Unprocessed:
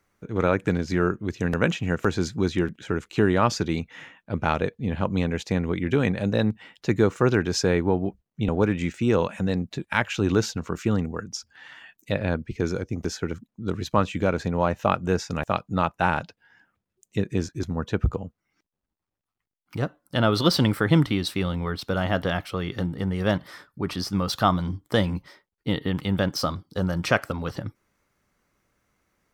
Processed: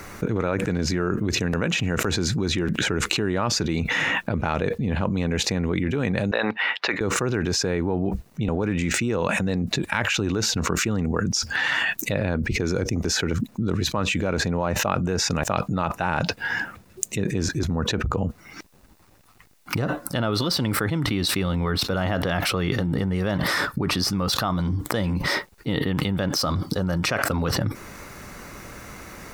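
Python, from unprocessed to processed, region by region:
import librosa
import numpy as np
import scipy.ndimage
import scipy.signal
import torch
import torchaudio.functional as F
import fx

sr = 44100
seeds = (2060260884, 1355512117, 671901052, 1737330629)

y = fx.chain(x, sr, fx.highpass(hz=970.0, slope=12),
    fx.air_absorb(metres=350.0), at=(6.31, 7.01))
y = fx.notch(y, sr, hz=3200.0, q=14.0)
y = fx.env_flatten(y, sr, amount_pct=100)
y = y * 10.0 ** (-8.5 / 20.0)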